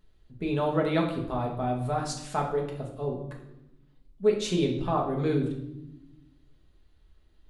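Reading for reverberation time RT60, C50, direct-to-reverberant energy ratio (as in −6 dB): 0.90 s, 6.5 dB, −1.0 dB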